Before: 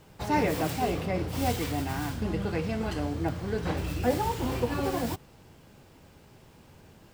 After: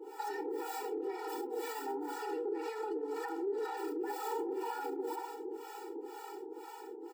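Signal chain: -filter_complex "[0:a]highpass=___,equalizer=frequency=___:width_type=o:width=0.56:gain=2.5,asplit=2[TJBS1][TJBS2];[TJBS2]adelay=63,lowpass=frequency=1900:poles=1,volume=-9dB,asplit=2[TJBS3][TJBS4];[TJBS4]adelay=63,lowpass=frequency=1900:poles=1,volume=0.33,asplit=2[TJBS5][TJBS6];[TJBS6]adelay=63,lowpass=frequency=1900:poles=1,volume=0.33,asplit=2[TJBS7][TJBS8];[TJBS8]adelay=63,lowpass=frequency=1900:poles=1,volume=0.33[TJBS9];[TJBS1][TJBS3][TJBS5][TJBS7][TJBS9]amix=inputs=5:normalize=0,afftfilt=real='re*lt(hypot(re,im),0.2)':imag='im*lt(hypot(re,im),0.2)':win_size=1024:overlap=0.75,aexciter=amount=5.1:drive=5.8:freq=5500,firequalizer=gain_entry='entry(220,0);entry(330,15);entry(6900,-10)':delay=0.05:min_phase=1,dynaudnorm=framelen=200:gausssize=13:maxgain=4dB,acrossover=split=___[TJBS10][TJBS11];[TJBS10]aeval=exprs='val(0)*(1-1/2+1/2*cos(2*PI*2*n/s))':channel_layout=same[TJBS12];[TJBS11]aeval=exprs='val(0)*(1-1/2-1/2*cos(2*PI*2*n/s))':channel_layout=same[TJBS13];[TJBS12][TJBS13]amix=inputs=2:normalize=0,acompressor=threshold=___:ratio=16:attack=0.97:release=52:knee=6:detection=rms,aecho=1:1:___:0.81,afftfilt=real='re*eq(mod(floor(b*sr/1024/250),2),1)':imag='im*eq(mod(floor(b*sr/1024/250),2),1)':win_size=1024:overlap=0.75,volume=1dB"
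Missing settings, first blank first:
270, 6800, 600, -36dB, 2.3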